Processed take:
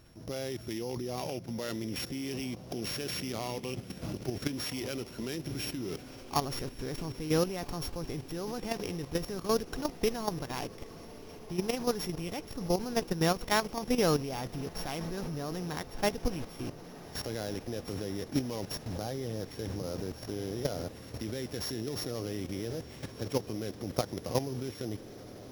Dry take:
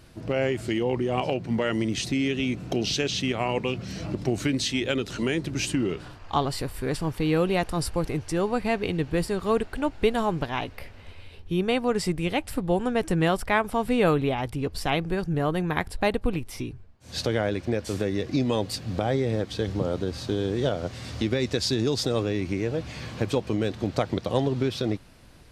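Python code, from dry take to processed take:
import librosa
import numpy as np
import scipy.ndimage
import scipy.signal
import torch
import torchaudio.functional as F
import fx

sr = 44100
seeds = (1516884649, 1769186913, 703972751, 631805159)

y = np.r_[np.sort(x[:len(x) // 8 * 8].reshape(-1, 8), axis=1).ravel(), x[len(x) // 8 * 8:]]
y = fx.echo_diffused(y, sr, ms=1393, feedback_pct=74, wet_db=-15)
y = fx.level_steps(y, sr, step_db=11)
y = F.gain(torch.from_numpy(y), -3.0).numpy()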